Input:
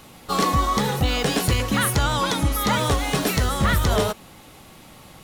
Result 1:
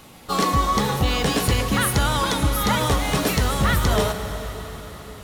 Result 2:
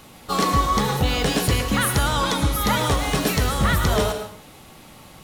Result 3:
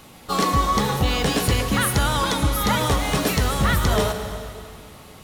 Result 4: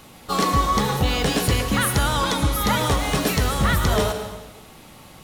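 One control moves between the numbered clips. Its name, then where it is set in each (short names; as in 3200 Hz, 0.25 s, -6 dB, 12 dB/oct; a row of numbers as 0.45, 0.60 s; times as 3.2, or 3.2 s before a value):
plate-style reverb, RT60: 4.9, 0.52, 2.4, 1.1 s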